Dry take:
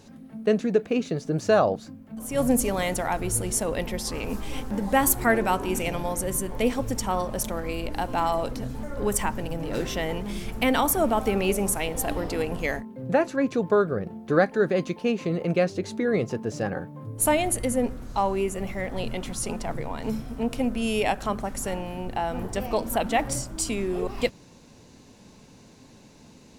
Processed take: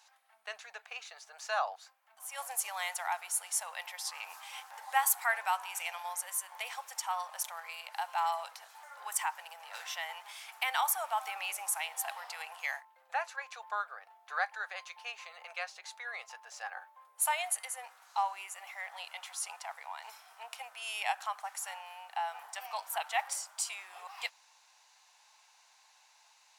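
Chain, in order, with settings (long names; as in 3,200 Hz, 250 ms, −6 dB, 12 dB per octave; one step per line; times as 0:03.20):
elliptic high-pass filter 790 Hz, stop band 60 dB
level −5 dB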